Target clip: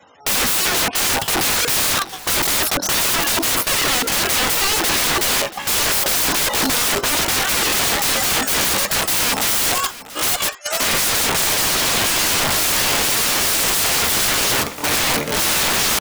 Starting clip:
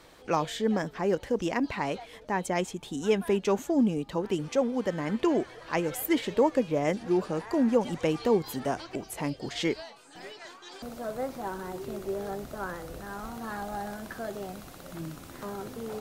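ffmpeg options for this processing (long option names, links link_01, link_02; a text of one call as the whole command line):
ffmpeg -i in.wav -filter_complex "[0:a]acrossover=split=140|1500|2600[link_01][link_02][link_03][link_04];[link_02]asoftclip=type=tanh:threshold=-25dB[link_05];[link_01][link_05][link_03][link_04]amix=inputs=4:normalize=0,highpass=64,acompressor=threshold=-36dB:ratio=10,flanger=delay=6:depth=8.4:regen=-73:speed=0.45:shape=triangular,asetrate=74167,aresample=44100,atempo=0.594604,afftfilt=real='re*gte(hypot(re,im),0.00126)':imag='im*gte(hypot(re,im),0.00126)':win_size=1024:overlap=0.75,acontrast=81,agate=range=-26dB:threshold=-42dB:ratio=16:detection=peak,adynamicequalizer=threshold=0.00178:dfrequency=350:dqfactor=6.9:tfrequency=350:tqfactor=6.9:attack=5:release=100:ratio=0.375:range=3.5:mode=cutabove:tftype=bell,apsyclip=30.5dB,aeval=exprs='(mod(4.47*val(0)+1,2)-1)/4.47':channel_layout=same,aecho=1:1:683:0.141" out.wav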